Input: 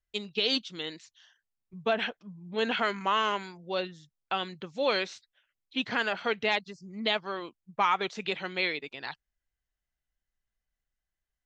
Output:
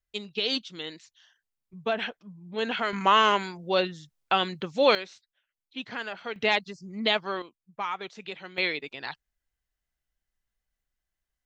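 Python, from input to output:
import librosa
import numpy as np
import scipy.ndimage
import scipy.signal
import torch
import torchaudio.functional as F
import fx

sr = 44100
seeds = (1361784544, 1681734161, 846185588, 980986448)

y = fx.gain(x, sr, db=fx.steps((0.0, -0.5), (2.93, 7.0), (4.95, -6.0), (6.36, 3.5), (7.42, -6.5), (8.58, 2.0)))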